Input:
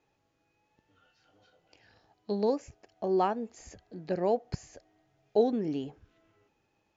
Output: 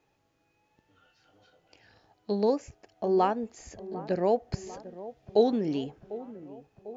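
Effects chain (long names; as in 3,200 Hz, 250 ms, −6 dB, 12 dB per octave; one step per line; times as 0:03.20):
0:04.66–0:05.84: parametric band 3,900 Hz +5 dB 1.3 octaves
delay with a low-pass on its return 748 ms, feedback 60%, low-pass 1,200 Hz, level −16 dB
level +2.5 dB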